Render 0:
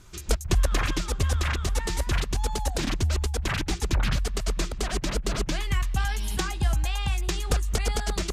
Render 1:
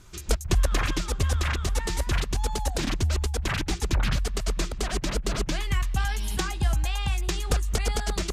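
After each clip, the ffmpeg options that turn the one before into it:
-af anull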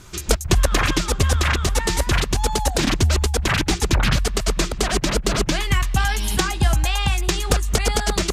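-filter_complex "[0:a]lowshelf=f=63:g=-7,asplit=2[s0][s1];[s1]alimiter=limit=0.112:level=0:latency=1:release=303,volume=0.75[s2];[s0][s2]amix=inputs=2:normalize=0,aeval=exprs='0.376*(cos(1*acos(clip(val(0)/0.376,-1,1)))-cos(1*PI/2))+0.0266*(cos(3*acos(clip(val(0)/0.376,-1,1)))-cos(3*PI/2))':c=same,volume=2.24"

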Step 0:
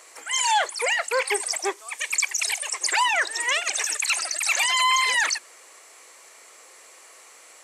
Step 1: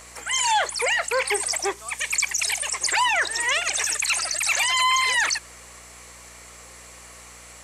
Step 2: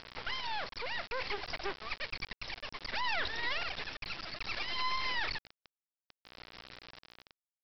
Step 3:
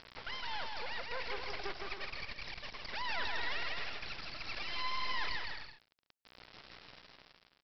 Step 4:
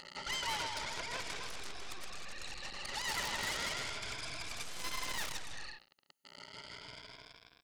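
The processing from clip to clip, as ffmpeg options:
-filter_complex "[0:a]asplit=2[s0][s1];[s1]alimiter=limit=0.075:level=0:latency=1:release=29,volume=1.26[s2];[s0][s2]amix=inputs=2:normalize=0,aeval=exprs='val(0)+0.00355*(sin(2*PI*60*n/s)+sin(2*PI*2*60*n/s)/2+sin(2*PI*3*60*n/s)/3+sin(2*PI*4*60*n/s)/4+sin(2*PI*5*60*n/s)/5)':c=same,volume=0.708"
-af "alimiter=limit=0.0794:level=0:latency=1:release=55,tremolo=f=0.6:d=0.45,aresample=11025,acrusher=bits=4:dc=4:mix=0:aa=0.000001,aresample=44100"
-af "aecho=1:1:160|264|331.6|375.5|404.1:0.631|0.398|0.251|0.158|0.1,volume=0.562"
-af "afftfilt=real='re*pow(10,10/40*sin(2*PI*(1.7*log(max(b,1)*sr/1024/100)/log(2)-(0.33)*(pts-256)/sr)))':imag='im*pow(10,10/40*sin(2*PI*(1.7*log(max(b,1)*sr/1024/100)/log(2)-(0.33)*(pts-256)/sr)))':win_size=1024:overlap=0.75,aeval=exprs='0.1*(cos(1*acos(clip(val(0)/0.1,-1,1)))-cos(1*PI/2))+0.0126*(cos(4*acos(clip(val(0)/0.1,-1,1)))-cos(4*PI/2))+0.00562*(cos(5*acos(clip(val(0)/0.1,-1,1)))-cos(5*PI/2))+0.00355*(cos(6*acos(clip(val(0)/0.1,-1,1)))-cos(6*PI/2))+0.0178*(cos(8*acos(clip(val(0)/0.1,-1,1)))-cos(8*PI/2))':c=same,aeval=exprs='0.0282*(abs(mod(val(0)/0.0282+3,4)-2)-1)':c=same,volume=1.68"

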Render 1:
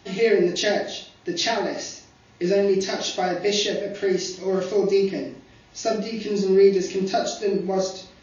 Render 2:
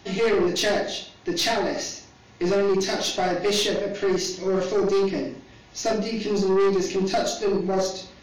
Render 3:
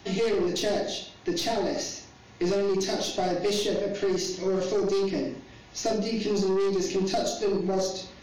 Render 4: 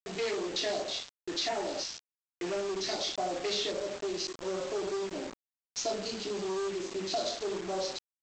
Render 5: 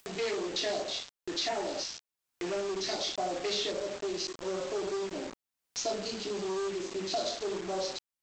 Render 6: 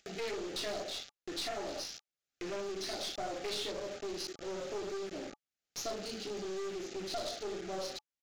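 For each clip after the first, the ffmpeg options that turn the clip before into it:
-af "aeval=exprs='(tanh(10*val(0)+0.25)-tanh(0.25))/10':c=same,volume=1.41"
-filter_complex "[0:a]acrossover=split=840|3100[s0][s1][s2];[s0]acompressor=threshold=0.0708:ratio=4[s3];[s1]acompressor=threshold=0.00631:ratio=4[s4];[s2]acompressor=threshold=0.0251:ratio=4[s5];[s3][s4][s5]amix=inputs=3:normalize=0"
-af "highpass=f=980:p=1,afwtdn=0.0112,aresample=16000,acrusher=bits=6:mix=0:aa=0.000001,aresample=44100"
-af "acompressor=mode=upward:threshold=0.0112:ratio=2.5"
-af "asuperstop=centerf=1000:order=20:qfactor=3.2,aresample=16000,aresample=44100,aeval=exprs='clip(val(0),-1,0.0158)':c=same,volume=0.668"

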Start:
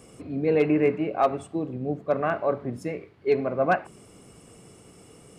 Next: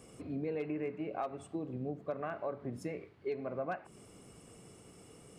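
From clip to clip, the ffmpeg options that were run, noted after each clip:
-af "acompressor=threshold=0.0355:ratio=6,volume=0.531"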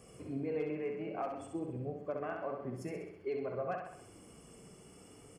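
-filter_complex "[0:a]flanger=delay=1.6:depth=3.5:regen=-55:speed=0.54:shape=sinusoidal,asuperstop=centerf=3800:order=8:qfactor=6.9,asplit=2[s0][s1];[s1]aecho=0:1:65|130|195|260|325|390|455:0.562|0.298|0.158|0.0837|0.0444|0.0235|0.0125[s2];[s0][s2]amix=inputs=2:normalize=0,volume=1.33"

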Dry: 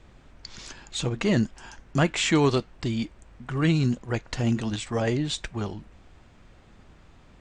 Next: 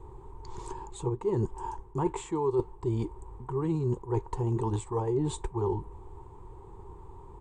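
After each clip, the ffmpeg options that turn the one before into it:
-af "firequalizer=gain_entry='entry(110,0);entry(240,-15);entry(390,10);entry(620,-19);entry(910,11);entry(1400,-18);entry(2600,-22);entry(3800,-21);entry(5400,-24);entry(8000,-7)':delay=0.05:min_phase=1,areverse,acompressor=threshold=0.0251:ratio=8,areverse,volume=2.11"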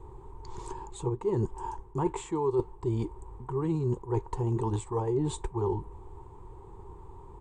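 -af anull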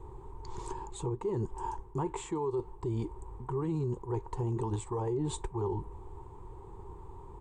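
-af "alimiter=level_in=1.12:limit=0.0631:level=0:latency=1:release=80,volume=0.891"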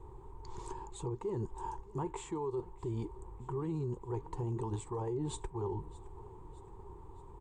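-af "aecho=1:1:618|1236|1854|2472:0.0944|0.0491|0.0255|0.0133,volume=0.631"

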